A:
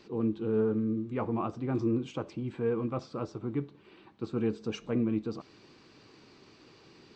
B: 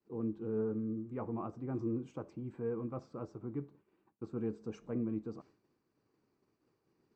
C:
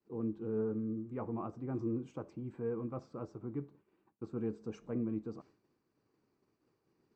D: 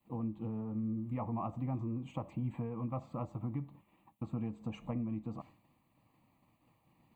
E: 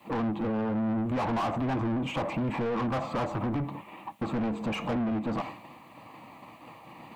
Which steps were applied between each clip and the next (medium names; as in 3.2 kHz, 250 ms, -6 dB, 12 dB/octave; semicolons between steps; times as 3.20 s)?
expander -47 dBFS; peaking EQ 3.5 kHz -15 dB 1.4 oct; trim -7 dB
no audible change
compression 6:1, threshold -41 dBFS, peak gain reduction 10.5 dB; static phaser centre 1.5 kHz, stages 6; trim +12 dB
overdrive pedal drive 32 dB, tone 2 kHz, clips at -25.5 dBFS; trim +3.5 dB